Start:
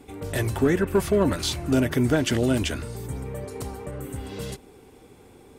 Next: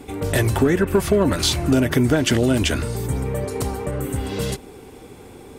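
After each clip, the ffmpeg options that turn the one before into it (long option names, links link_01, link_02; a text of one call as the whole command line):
ffmpeg -i in.wav -af "acompressor=threshold=-24dB:ratio=3,volume=9dB" out.wav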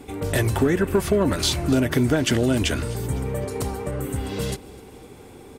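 ffmpeg -i in.wav -af "aecho=1:1:254|508|762|1016:0.0794|0.0429|0.0232|0.0125,volume=-2.5dB" out.wav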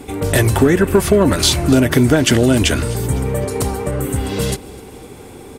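ffmpeg -i in.wav -af "equalizer=frequency=10000:width=1:gain=3,volume=7.5dB" out.wav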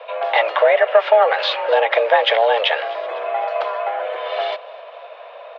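ffmpeg -i in.wav -af "highpass=frequency=320:width_type=q:width=0.5412,highpass=frequency=320:width_type=q:width=1.307,lowpass=frequency=3300:width_type=q:width=0.5176,lowpass=frequency=3300:width_type=q:width=0.7071,lowpass=frequency=3300:width_type=q:width=1.932,afreqshift=220,volume=1.5dB" out.wav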